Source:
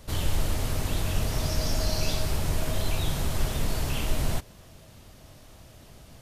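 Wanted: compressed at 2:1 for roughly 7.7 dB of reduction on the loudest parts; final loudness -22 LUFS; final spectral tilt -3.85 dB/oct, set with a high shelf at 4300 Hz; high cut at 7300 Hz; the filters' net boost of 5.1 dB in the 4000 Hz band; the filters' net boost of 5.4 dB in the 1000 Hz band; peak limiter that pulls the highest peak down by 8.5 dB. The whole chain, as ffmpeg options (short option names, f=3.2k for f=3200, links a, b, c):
-af "lowpass=7.3k,equalizer=f=1k:t=o:g=6.5,equalizer=f=4k:t=o:g=4.5,highshelf=f=4.3k:g=3.5,acompressor=threshold=-34dB:ratio=2,volume=18.5dB,alimiter=limit=-10dB:level=0:latency=1"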